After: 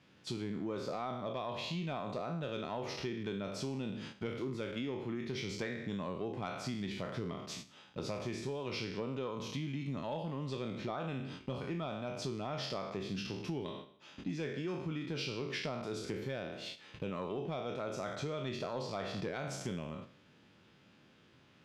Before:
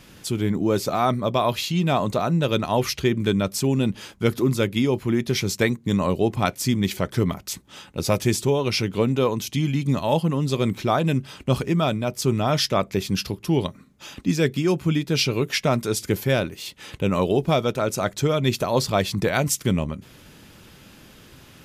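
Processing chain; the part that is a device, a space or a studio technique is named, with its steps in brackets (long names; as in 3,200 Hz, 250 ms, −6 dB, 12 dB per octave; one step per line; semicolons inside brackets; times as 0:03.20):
peak hold with a decay on every bin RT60 0.65 s
AM radio (band-pass filter 110–4,100 Hz; downward compressor 5 to 1, threshold −27 dBFS, peak gain reduction 12.5 dB; soft clipping −17 dBFS, distortion −24 dB)
noise gate −37 dBFS, range −8 dB
level −8.5 dB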